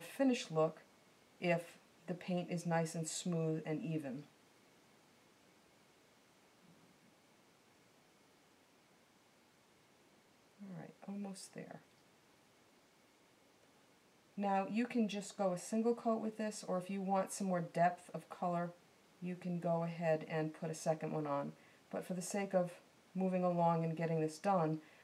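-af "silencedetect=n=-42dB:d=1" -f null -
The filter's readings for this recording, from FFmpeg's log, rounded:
silence_start: 4.20
silence_end: 10.77 | silence_duration: 6.57
silence_start: 11.75
silence_end: 14.38 | silence_duration: 2.63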